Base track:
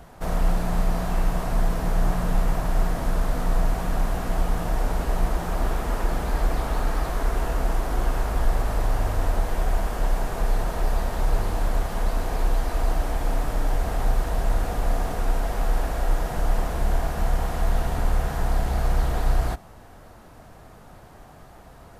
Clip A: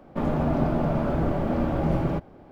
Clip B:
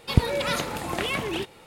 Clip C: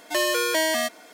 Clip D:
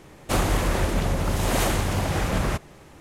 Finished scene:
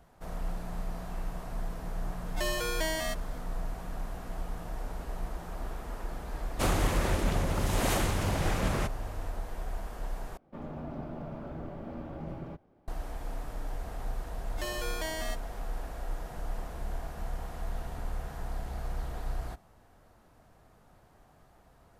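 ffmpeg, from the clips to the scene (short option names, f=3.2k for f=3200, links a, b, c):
-filter_complex "[3:a]asplit=2[a][b];[0:a]volume=-13.5dB,asplit=2[c][d];[c]atrim=end=10.374[e];[1:a]atrim=end=2.51,asetpts=PTS-STARTPTS,volume=-16dB[f];[d]atrim=start=12.876[g];[a]atrim=end=1.13,asetpts=PTS-STARTPTS,volume=-10dB,afade=t=in:d=0.004:c=hsin,afade=t=out:st=1.126:d=0.004:c=hsin,adelay=2260[h];[4:a]atrim=end=3,asetpts=PTS-STARTPTS,volume=-5.5dB,afade=t=in:d=0.004:c=hsin,afade=t=out:st=2.996:d=0.004:c=hsin,adelay=6300[i];[b]atrim=end=1.13,asetpts=PTS-STARTPTS,volume=-14dB,afade=t=in:d=0.004:c=hsin,afade=t=out:st=1.126:d=0.004:c=hsin,adelay=14470[j];[e][f]acrossfade=d=0.004:c1=hsin:c2=hsin[k];[k][g]acrossfade=d=0.004:c1=hsin:c2=hsin[l];[l][h][i][j]amix=inputs=4:normalize=0"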